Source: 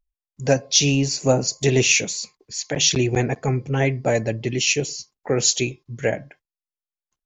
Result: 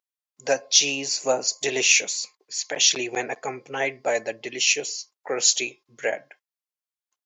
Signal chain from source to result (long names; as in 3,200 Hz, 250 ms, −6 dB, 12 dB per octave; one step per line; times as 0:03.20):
high-pass filter 580 Hz 12 dB per octave